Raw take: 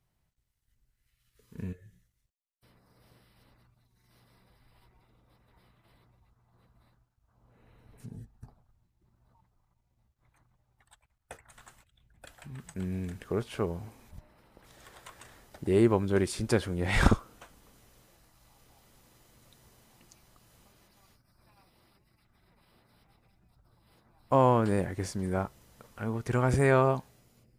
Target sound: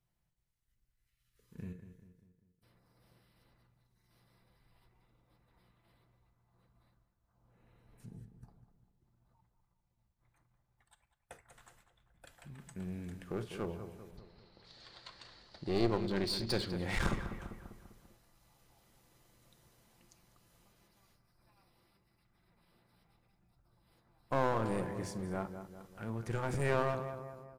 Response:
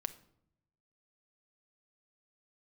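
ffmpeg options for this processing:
-filter_complex "[0:a]asettb=1/sr,asplit=3[s0][s1][s2];[s0]atrim=end=14.174[s3];[s1]atrim=start=14.17:end=16.67,asetpts=PTS-STARTPTS,afade=t=in:d=0.004:c=qsin,afade=t=out:st=2.496:d=0.004:c=qsin,lowpass=f=4400:t=q:w=10[s4];[s2]atrim=start=16.666[s5];[s3][s4]acrossfade=d=0.004:c1=hsin:c2=qsin[s6];[s6][s5]acrossfade=d=0.004:c1=qsin:c2=hsin,asplit=2[s7][s8];[s8]adelay=198,lowpass=f=2500:p=1,volume=0.299,asplit=2[s9][s10];[s10]adelay=198,lowpass=f=2500:p=1,volume=0.5,asplit=2[s11][s12];[s12]adelay=198,lowpass=f=2500:p=1,volume=0.5,asplit=2[s13][s14];[s14]adelay=198,lowpass=f=2500:p=1,volume=0.5,asplit=2[s15][s16];[s16]adelay=198,lowpass=f=2500:p=1,volume=0.5[s17];[s7][s9][s11][s13][s15][s17]amix=inputs=6:normalize=0[s18];[1:a]atrim=start_sample=2205,atrim=end_sample=3528[s19];[s18][s19]afir=irnorm=-1:irlink=0,aeval=exprs='clip(val(0),-1,0.0282)':c=same,volume=0.531"

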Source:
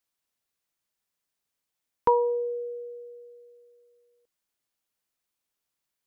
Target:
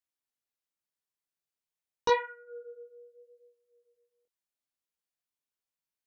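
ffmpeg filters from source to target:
-af "aeval=exprs='0.299*(cos(1*acos(clip(val(0)/0.299,-1,1)))-cos(1*PI/2))+0.0668*(cos(7*acos(clip(val(0)/0.299,-1,1)))-cos(7*PI/2))':c=same,flanger=delay=15.5:depth=7:speed=0.83,volume=0.794"

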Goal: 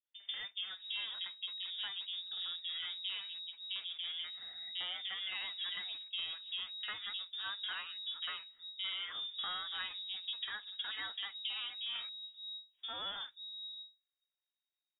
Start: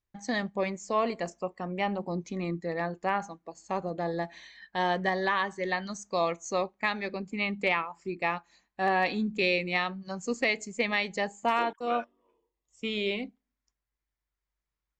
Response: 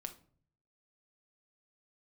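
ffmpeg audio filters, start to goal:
-filter_complex "[0:a]aeval=exprs='if(lt(val(0),0),0.251*val(0),val(0))':c=same,acompressor=threshold=0.0251:ratio=6,acrossover=split=150|1400[s0][s1][s2];[s2]adelay=50[s3];[s0]adelay=530[s4];[s4][s1][s3]amix=inputs=3:normalize=0,lowpass=f=3200:t=q:w=0.5098,lowpass=f=3200:t=q:w=0.6013,lowpass=f=3200:t=q:w=0.9,lowpass=f=3200:t=q:w=2.563,afreqshift=-3800,volume=0.708"

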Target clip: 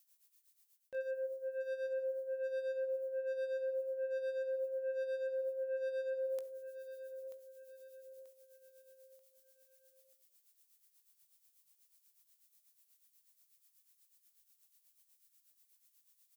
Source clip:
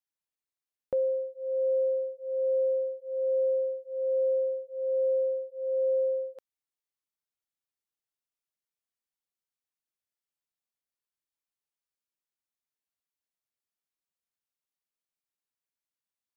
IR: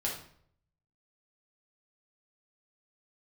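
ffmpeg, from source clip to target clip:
-filter_complex "[0:a]asoftclip=type=tanh:threshold=0.0501,asplit=2[s0][s1];[s1]adelay=19,volume=0.282[s2];[s0][s2]amix=inputs=2:normalize=0,asplit=2[s3][s4];[s4]equalizer=f=500:w=5.1:g=14[s5];[1:a]atrim=start_sample=2205,adelay=17[s6];[s5][s6]afir=irnorm=-1:irlink=0,volume=0.0596[s7];[s3][s7]amix=inputs=2:normalize=0,crystalizer=i=9.5:c=0,asoftclip=type=hard:threshold=0.0841,tremolo=f=8.2:d=0.74,areverse,acompressor=threshold=0.0112:ratio=10,areverse,aecho=1:1:935|1870|2805|3740:0.282|0.121|0.0521|0.0224,volume=1.26"

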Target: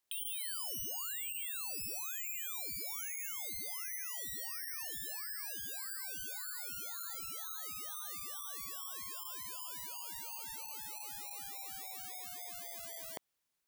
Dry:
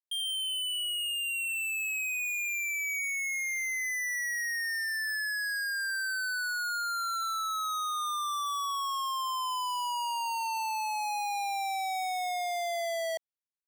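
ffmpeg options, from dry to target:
-af "aeval=exprs='0.0251*sin(PI/2*2*val(0)/0.0251)':c=same,volume=1.19"

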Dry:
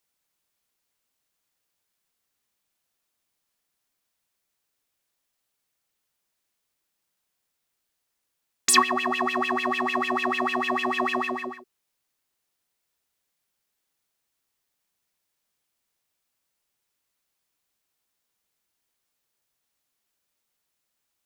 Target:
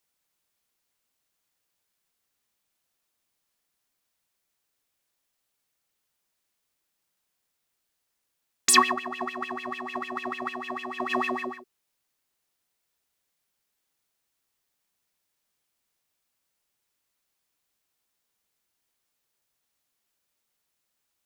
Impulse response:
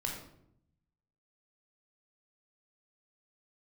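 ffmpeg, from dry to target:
-filter_complex "[0:a]asplit=3[s0][s1][s2];[s0]afade=t=out:st=8.91:d=0.02[s3];[s1]agate=range=0.316:threshold=0.0708:ratio=16:detection=peak,afade=t=in:st=8.91:d=0.02,afade=t=out:st=11.09:d=0.02[s4];[s2]afade=t=in:st=11.09:d=0.02[s5];[s3][s4][s5]amix=inputs=3:normalize=0"

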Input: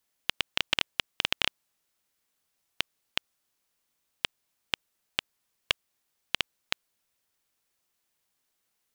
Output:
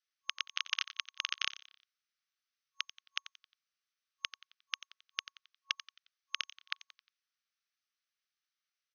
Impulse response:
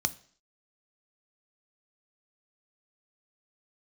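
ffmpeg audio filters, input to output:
-filter_complex "[0:a]asplit=5[s0][s1][s2][s3][s4];[s1]adelay=89,afreqshift=85,volume=0.178[s5];[s2]adelay=178,afreqshift=170,volume=0.0804[s6];[s3]adelay=267,afreqshift=255,volume=0.0359[s7];[s4]adelay=356,afreqshift=340,volume=0.0162[s8];[s0][s5][s6][s7][s8]amix=inputs=5:normalize=0,aeval=exprs='0.631*(cos(1*acos(clip(val(0)/0.631,-1,1)))-cos(1*PI/2))+0.02*(cos(7*acos(clip(val(0)/0.631,-1,1)))-cos(7*PI/2))+0.141*(cos(8*acos(clip(val(0)/0.631,-1,1)))-cos(8*PI/2))':c=same,afftfilt=real='re*between(b*sr/4096,1100,6400)':imag='im*between(b*sr/4096,1100,6400)':win_size=4096:overlap=0.75,volume=0.501"

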